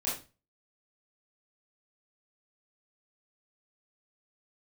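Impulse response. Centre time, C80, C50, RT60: 40 ms, 11.0 dB, 4.5 dB, 0.30 s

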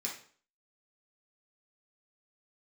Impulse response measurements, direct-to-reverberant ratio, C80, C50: -4.0 dB, 11.5 dB, 6.0 dB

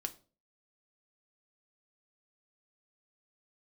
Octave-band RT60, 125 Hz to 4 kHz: 0.50 s, 0.45 s, 0.45 s, 0.35 s, 0.30 s, 0.30 s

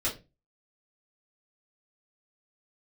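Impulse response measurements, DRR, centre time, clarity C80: -6.0 dB, 20 ms, 18.5 dB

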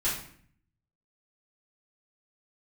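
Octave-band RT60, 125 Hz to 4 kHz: 0.95 s, 0.85 s, 0.60 s, 0.55 s, 0.55 s, 0.45 s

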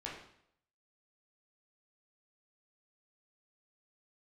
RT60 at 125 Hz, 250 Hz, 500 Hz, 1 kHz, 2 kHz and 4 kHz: 0.75 s, 0.70 s, 0.70 s, 0.70 s, 0.65 s, 0.65 s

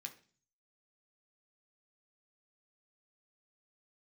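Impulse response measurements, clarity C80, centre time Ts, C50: 18.0 dB, 9 ms, 13.5 dB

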